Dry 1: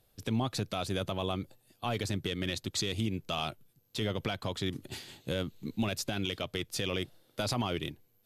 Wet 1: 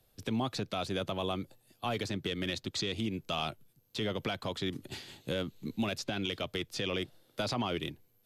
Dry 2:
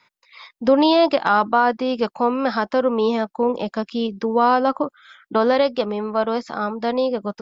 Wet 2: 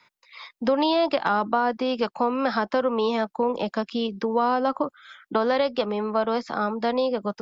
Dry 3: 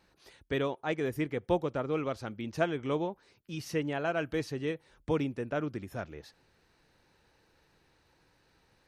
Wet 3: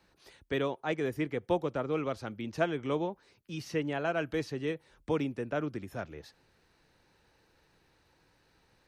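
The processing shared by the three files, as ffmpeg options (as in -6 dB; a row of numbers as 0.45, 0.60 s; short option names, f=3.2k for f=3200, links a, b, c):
-filter_complex "[0:a]acrossover=split=140|630|6200[a][b][c][d];[a]acompressor=threshold=-47dB:ratio=4[e];[b]acompressor=threshold=-25dB:ratio=4[f];[c]acompressor=threshold=-23dB:ratio=4[g];[d]acompressor=threshold=-58dB:ratio=4[h];[e][f][g][h]amix=inputs=4:normalize=0"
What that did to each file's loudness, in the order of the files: -1.0, -4.5, -0.5 LU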